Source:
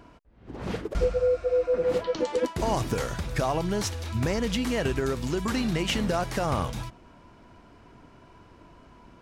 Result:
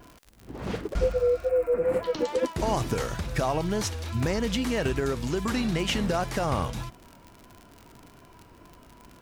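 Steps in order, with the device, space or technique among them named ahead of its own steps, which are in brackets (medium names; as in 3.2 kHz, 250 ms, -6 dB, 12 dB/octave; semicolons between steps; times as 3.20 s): vinyl LP (wow and flutter; crackle 75 per s -36 dBFS; white noise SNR 44 dB); 1.49–2.03 s: high-order bell 4.4 kHz -14 dB 1.3 oct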